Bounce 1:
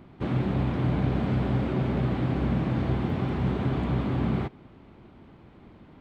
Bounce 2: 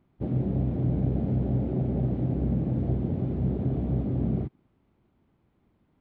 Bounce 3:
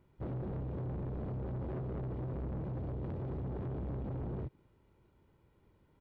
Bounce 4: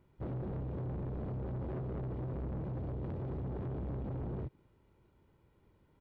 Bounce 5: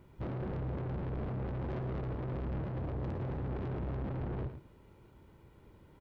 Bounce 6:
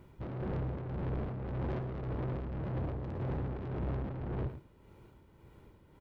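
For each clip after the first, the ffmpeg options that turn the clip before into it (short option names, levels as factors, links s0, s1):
-af "afwtdn=0.0316,lowshelf=f=200:g=3.5,volume=0.75"
-af "aecho=1:1:2.1:0.49,acompressor=threshold=0.0355:ratio=2.5,asoftclip=type=tanh:threshold=0.0158"
-af anull
-af "acompressor=threshold=0.01:ratio=6,aeval=exprs='0.015*(cos(1*acos(clip(val(0)/0.015,-1,1)))-cos(1*PI/2))+0.00188*(cos(5*acos(clip(val(0)/0.015,-1,1)))-cos(5*PI/2))':c=same,aecho=1:1:109:0.335,volume=1.68"
-af "tremolo=f=1.8:d=0.47,volume=1.33"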